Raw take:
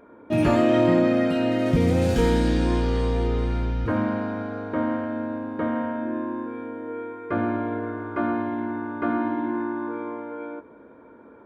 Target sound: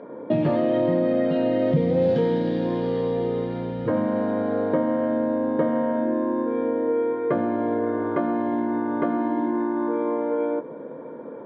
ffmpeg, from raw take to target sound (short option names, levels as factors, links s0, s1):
-af "acompressor=threshold=0.0316:ratio=6,highpass=f=130:w=0.5412,highpass=f=130:w=1.3066,equalizer=f=150:t=q:w=4:g=9,equalizer=f=520:t=q:w=4:g=9,equalizer=f=1400:t=q:w=4:g=-8,equalizer=f=2500:t=q:w=4:g=-9,lowpass=f=3700:w=0.5412,lowpass=f=3700:w=1.3066,volume=2.66"